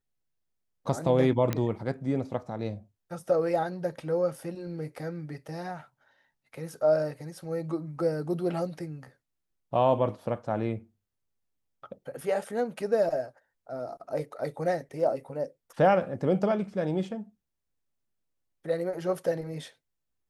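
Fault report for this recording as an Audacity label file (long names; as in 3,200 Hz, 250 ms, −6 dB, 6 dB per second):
1.530000	1.530000	click −14 dBFS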